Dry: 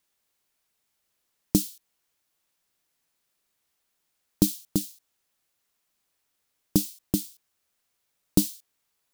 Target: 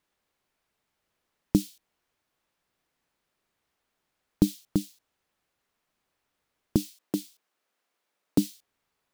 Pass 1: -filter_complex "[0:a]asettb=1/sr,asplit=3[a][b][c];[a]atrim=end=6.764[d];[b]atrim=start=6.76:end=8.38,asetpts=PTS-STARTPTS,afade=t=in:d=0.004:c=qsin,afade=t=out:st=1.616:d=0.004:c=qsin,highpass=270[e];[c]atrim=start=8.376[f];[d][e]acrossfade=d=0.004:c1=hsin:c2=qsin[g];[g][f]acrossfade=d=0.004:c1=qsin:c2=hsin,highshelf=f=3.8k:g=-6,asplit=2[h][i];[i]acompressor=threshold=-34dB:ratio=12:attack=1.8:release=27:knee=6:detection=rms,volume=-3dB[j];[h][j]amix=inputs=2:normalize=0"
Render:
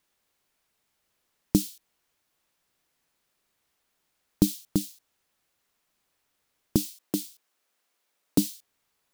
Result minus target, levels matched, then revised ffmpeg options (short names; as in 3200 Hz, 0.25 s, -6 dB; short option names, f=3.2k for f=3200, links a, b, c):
8000 Hz band +6.0 dB
-filter_complex "[0:a]asettb=1/sr,asplit=3[a][b][c];[a]atrim=end=6.764[d];[b]atrim=start=6.76:end=8.38,asetpts=PTS-STARTPTS,afade=t=in:d=0.004:c=qsin,afade=t=out:st=1.616:d=0.004:c=qsin,highpass=270[e];[c]atrim=start=8.376[f];[d][e]acrossfade=d=0.004:c1=hsin:c2=qsin[g];[g][f]acrossfade=d=0.004:c1=qsin:c2=hsin,highshelf=f=3.8k:g=-14.5,asplit=2[h][i];[i]acompressor=threshold=-34dB:ratio=12:attack=1.8:release=27:knee=6:detection=rms,volume=-3dB[j];[h][j]amix=inputs=2:normalize=0"